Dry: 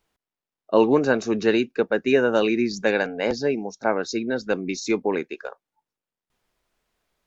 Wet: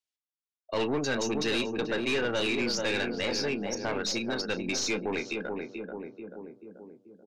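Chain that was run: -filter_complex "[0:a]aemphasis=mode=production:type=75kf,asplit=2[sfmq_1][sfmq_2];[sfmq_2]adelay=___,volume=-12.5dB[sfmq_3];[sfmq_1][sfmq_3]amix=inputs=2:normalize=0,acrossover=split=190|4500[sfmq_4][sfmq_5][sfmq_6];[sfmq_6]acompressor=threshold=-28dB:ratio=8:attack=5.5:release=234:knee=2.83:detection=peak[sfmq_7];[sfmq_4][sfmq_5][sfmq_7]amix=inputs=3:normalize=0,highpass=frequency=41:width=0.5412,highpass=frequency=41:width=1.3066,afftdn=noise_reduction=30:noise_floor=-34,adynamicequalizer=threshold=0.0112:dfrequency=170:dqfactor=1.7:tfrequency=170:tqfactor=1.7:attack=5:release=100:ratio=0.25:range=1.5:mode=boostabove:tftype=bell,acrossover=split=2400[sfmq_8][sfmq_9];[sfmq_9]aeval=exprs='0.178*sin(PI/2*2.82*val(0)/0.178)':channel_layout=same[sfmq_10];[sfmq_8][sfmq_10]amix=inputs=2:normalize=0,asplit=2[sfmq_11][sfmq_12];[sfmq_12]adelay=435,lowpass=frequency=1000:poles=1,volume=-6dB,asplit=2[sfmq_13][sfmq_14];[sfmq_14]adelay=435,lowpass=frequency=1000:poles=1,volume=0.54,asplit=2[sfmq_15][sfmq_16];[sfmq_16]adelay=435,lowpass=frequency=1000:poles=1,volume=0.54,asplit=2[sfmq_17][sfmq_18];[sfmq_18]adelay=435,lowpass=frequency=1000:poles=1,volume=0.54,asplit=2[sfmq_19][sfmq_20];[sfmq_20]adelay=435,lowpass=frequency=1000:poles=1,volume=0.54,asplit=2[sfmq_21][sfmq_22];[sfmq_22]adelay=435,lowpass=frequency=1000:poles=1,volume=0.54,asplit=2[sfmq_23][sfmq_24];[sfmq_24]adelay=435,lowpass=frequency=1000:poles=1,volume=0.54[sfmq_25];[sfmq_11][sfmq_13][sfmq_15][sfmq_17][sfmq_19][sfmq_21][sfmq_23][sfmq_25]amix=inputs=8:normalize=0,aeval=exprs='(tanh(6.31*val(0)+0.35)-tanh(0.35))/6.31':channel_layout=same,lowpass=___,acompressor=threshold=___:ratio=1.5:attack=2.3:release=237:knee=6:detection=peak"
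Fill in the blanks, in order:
34, 6100, -38dB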